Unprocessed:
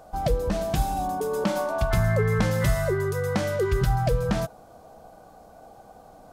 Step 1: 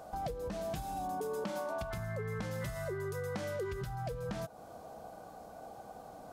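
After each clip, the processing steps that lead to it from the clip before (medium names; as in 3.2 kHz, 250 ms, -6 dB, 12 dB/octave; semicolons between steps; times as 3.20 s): in parallel at -1 dB: peak limiter -22 dBFS, peak gain reduction 10.5 dB; on the sum: compression 6:1, threshold -29 dBFS, peak gain reduction 13.5 dB; high-pass 84 Hz 6 dB/octave; trim -6 dB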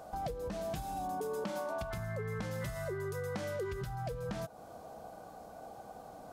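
no audible change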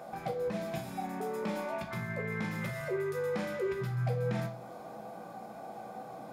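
saturation -32 dBFS, distortion -20 dB; reverberation RT60 0.55 s, pre-delay 3 ms, DRR 1 dB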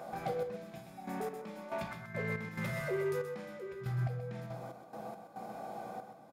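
trance gate "xx...x..x.x.x" 70 bpm -12 dB; in parallel at -4.5 dB: hard clipper -37 dBFS, distortion -8 dB; on the sum: delay 128 ms -9 dB; trim -3.5 dB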